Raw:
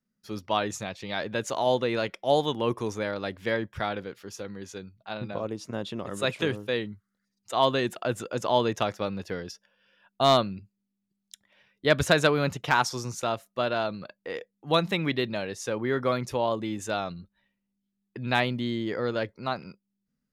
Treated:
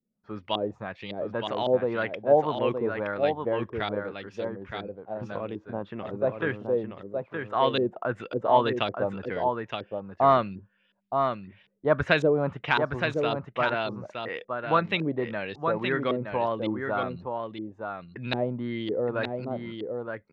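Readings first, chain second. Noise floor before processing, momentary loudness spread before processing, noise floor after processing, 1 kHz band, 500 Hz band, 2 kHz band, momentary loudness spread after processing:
-81 dBFS, 14 LU, -65 dBFS, +1.5 dB, +1.5 dB, -0.5 dB, 14 LU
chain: LFO low-pass saw up 1.8 Hz 370–3800 Hz; echo 0.919 s -5.5 dB; gain -2.5 dB

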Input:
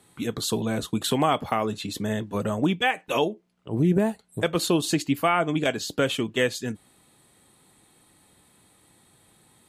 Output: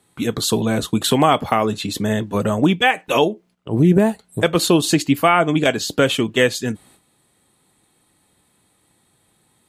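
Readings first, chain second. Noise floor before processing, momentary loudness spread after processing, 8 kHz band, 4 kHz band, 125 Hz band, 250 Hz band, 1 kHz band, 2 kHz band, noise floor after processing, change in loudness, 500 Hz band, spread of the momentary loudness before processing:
-61 dBFS, 7 LU, +7.5 dB, +7.5 dB, +7.5 dB, +7.5 dB, +7.5 dB, +7.5 dB, -63 dBFS, +7.5 dB, +7.5 dB, 7 LU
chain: gate -56 dBFS, range -10 dB; gain +7.5 dB

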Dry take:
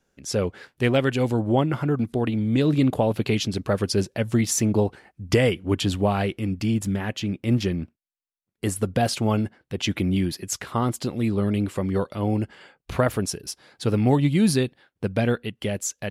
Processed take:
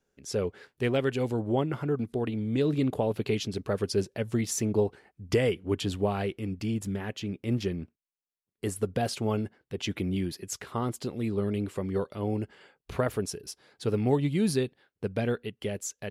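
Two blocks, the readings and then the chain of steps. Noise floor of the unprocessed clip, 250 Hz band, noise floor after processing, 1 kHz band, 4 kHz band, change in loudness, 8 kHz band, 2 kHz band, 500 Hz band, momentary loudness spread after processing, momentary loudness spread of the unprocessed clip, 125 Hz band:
-82 dBFS, -7.0 dB, under -85 dBFS, -7.5 dB, -7.5 dB, -6.5 dB, -7.5 dB, -7.5 dB, -4.0 dB, 9 LU, 9 LU, -7.5 dB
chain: bell 420 Hz +6.5 dB 0.32 oct; gain -7.5 dB

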